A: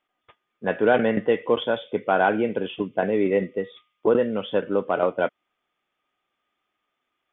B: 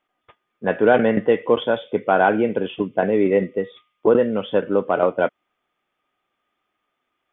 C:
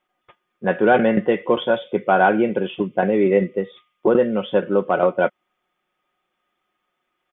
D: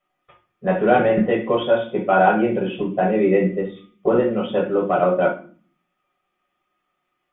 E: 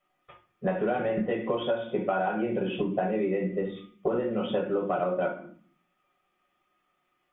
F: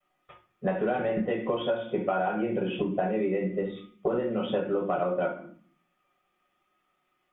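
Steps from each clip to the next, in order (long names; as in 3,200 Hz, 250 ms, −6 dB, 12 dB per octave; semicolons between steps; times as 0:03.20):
high-shelf EQ 3,100 Hz −6.5 dB; level +4 dB
comb filter 5.5 ms, depth 47%
convolution reverb RT60 0.45 s, pre-delay 7 ms, DRR −1.5 dB; level −9 dB
downward compressor 12 to 1, threshold −24 dBFS, peak gain reduction 15 dB
pitch vibrato 0.32 Hz 18 cents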